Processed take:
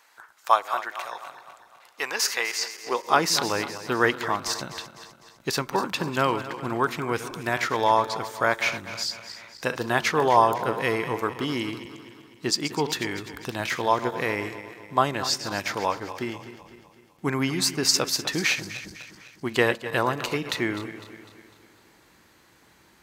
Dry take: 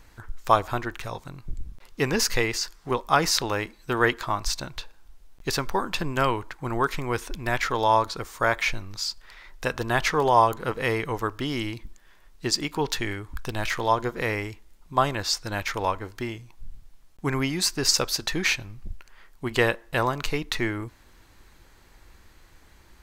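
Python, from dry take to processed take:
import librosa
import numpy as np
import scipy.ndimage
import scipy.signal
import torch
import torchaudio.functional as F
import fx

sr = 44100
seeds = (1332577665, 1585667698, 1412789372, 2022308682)

y = fx.reverse_delay_fb(x, sr, ms=126, feedback_pct=69, wet_db=-12.0)
y = fx.filter_sweep_highpass(y, sr, from_hz=800.0, to_hz=160.0, start_s=2.7, end_s=3.35, q=0.96)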